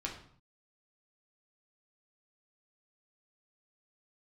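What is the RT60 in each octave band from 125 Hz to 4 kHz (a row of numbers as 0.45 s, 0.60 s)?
0.75 s, 0.70 s, 0.55 s, 0.60 s, 0.50 s, 0.45 s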